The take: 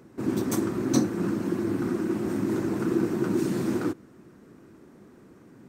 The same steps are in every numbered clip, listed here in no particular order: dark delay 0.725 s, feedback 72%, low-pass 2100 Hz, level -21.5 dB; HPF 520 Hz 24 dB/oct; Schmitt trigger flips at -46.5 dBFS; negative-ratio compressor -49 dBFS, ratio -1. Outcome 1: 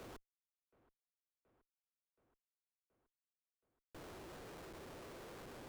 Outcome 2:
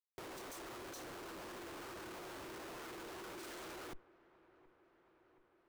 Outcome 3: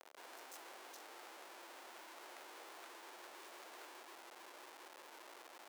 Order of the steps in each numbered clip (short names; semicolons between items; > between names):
negative-ratio compressor > HPF > Schmitt trigger > dark delay; HPF > Schmitt trigger > negative-ratio compressor > dark delay; dark delay > Schmitt trigger > negative-ratio compressor > HPF